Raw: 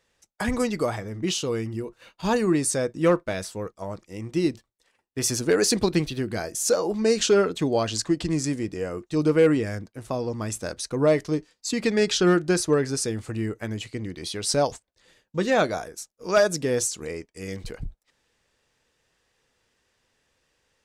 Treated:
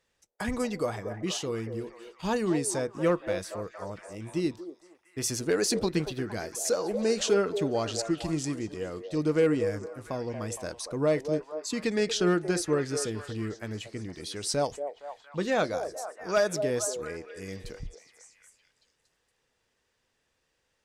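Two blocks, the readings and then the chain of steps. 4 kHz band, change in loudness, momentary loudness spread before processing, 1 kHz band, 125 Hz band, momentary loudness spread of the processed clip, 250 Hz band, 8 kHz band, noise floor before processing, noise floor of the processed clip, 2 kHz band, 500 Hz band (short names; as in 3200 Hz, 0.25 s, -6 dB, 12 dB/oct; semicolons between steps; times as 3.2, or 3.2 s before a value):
-5.5 dB, -5.0 dB, 14 LU, -4.5 dB, -5.5 dB, 13 LU, -5.5 dB, -5.5 dB, -77 dBFS, -76 dBFS, -5.0 dB, -4.5 dB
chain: delay with a stepping band-pass 0.232 s, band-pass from 540 Hz, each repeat 0.7 oct, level -6 dB; gain -5.5 dB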